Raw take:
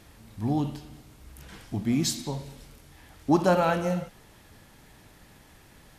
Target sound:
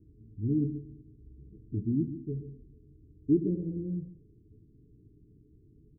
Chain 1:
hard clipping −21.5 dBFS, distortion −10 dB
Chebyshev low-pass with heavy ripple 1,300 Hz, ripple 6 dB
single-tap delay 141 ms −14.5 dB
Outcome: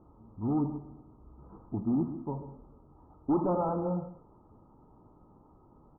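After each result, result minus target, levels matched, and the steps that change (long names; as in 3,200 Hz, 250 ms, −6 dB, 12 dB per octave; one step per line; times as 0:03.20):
hard clipping: distortion +19 dB; 500 Hz band +4.0 dB
change: hard clipping −12 dBFS, distortion −29 dB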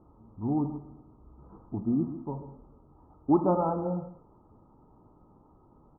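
500 Hz band +4.5 dB
change: Chebyshev low-pass with heavy ripple 440 Hz, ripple 6 dB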